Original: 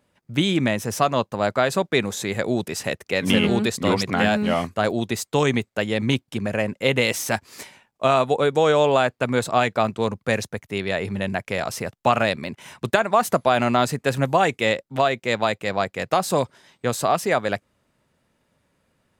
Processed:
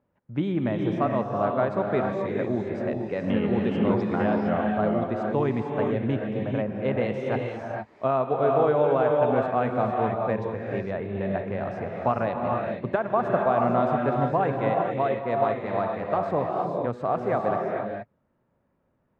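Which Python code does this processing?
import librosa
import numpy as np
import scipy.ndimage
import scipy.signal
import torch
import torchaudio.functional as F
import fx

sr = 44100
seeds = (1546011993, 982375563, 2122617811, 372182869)

y = scipy.signal.sosfilt(scipy.signal.butter(2, 1200.0, 'lowpass', fs=sr, output='sos'), x)
y = fx.rev_gated(y, sr, seeds[0], gate_ms=490, shape='rising', drr_db=0.5)
y = y * librosa.db_to_amplitude(-5.0)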